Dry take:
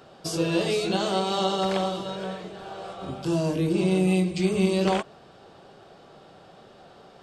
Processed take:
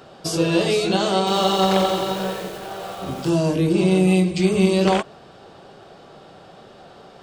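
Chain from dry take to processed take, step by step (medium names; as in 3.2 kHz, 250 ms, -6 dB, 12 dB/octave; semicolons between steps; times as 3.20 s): 1.18–3.30 s: bit-crushed delay 88 ms, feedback 80%, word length 7-bit, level -6 dB; trim +5.5 dB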